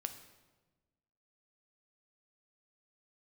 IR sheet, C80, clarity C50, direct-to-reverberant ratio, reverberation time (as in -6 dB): 12.0 dB, 10.5 dB, 7.5 dB, 1.2 s